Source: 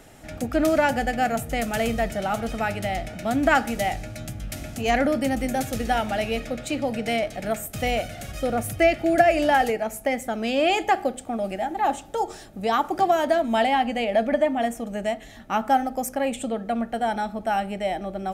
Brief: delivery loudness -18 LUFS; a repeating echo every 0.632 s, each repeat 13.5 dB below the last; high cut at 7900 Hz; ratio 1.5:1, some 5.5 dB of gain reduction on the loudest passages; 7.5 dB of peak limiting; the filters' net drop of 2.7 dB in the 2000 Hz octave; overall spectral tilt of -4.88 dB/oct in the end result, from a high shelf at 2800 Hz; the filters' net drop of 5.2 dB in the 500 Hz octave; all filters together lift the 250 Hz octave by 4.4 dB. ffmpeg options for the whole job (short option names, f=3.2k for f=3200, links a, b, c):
-af "lowpass=7.9k,equalizer=f=250:t=o:g=7.5,equalizer=f=500:t=o:g=-9,equalizer=f=2k:t=o:g=-5,highshelf=f=2.8k:g=5,acompressor=threshold=-31dB:ratio=1.5,alimiter=limit=-20.5dB:level=0:latency=1,aecho=1:1:632|1264:0.211|0.0444,volume=12dB"